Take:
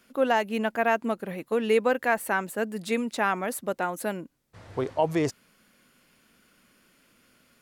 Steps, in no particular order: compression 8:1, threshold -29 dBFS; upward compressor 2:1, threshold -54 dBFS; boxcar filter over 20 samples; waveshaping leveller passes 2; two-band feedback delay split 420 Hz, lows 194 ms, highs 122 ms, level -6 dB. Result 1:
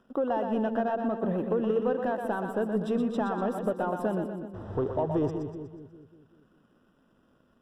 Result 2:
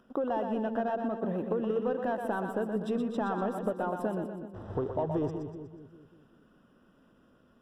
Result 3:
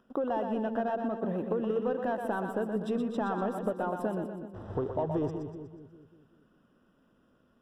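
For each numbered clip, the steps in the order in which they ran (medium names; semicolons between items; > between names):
compression > waveshaping leveller > two-band feedback delay > upward compressor > boxcar filter; waveshaping leveller > boxcar filter > compression > upward compressor > two-band feedback delay; upward compressor > waveshaping leveller > boxcar filter > compression > two-band feedback delay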